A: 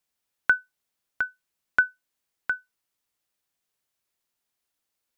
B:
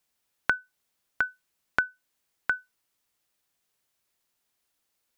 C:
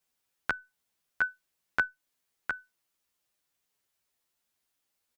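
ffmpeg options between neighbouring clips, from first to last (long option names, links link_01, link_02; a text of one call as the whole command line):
ffmpeg -i in.wav -af "acompressor=threshold=-26dB:ratio=6,volume=4dB" out.wav
ffmpeg -i in.wav -filter_complex "[0:a]asplit=2[link_01][link_02];[link_02]adelay=10.5,afreqshift=2[link_03];[link_01][link_03]amix=inputs=2:normalize=1" out.wav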